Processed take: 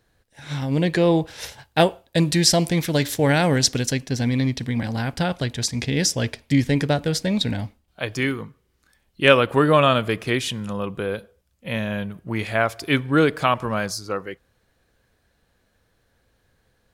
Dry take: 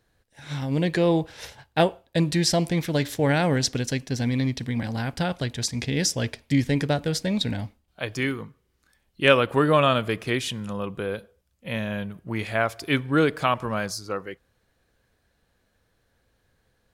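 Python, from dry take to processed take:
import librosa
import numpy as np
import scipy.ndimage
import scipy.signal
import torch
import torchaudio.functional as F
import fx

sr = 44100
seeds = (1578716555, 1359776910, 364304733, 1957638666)

y = fx.high_shelf(x, sr, hz=4500.0, db=6.0, at=(1.27, 3.92))
y = F.gain(torch.from_numpy(y), 3.0).numpy()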